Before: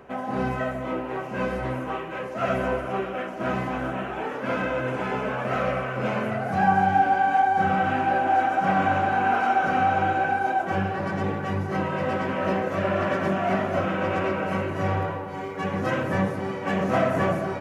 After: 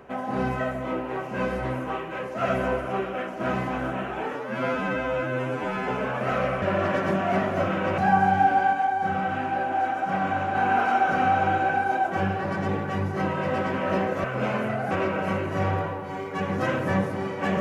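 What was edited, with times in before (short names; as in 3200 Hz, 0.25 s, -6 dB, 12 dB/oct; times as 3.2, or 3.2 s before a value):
4.36–5.12 stretch 2×
5.86–6.53 swap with 12.79–14.15
7.28–9.1 gain -4 dB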